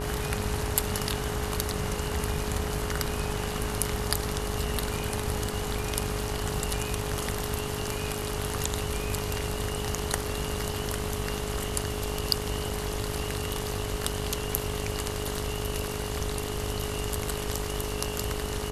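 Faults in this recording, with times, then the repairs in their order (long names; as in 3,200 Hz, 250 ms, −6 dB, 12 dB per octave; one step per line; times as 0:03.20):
mains buzz 50 Hz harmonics 25 −35 dBFS
whistle 420 Hz −36 dBFS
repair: notch filter 420 Hz, Q 30
hum removal 50 Hz, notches 25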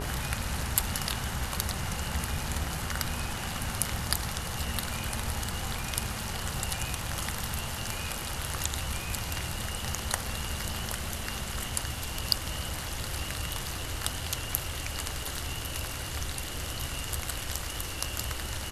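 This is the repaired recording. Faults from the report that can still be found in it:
none of them is left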